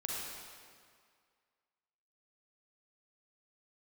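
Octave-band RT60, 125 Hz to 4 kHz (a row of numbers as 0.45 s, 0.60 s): 1.8 s, 1.9 s, 2.0 s, 2.1 s, 1.9 s, 1.7 s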